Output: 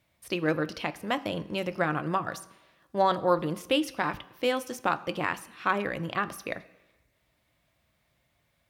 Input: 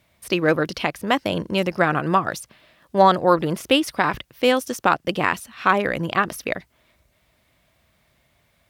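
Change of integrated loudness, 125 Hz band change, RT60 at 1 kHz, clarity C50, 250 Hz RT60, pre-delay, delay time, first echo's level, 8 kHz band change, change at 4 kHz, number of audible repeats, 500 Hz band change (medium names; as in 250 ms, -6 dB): -8.5 dB, -8.0 dB, 1.0 s, 18.0 dB, 1.0 s, 3 ms, no echo, no echo, -9.0 dB, -9.0 dB, no echo, -8.0 dB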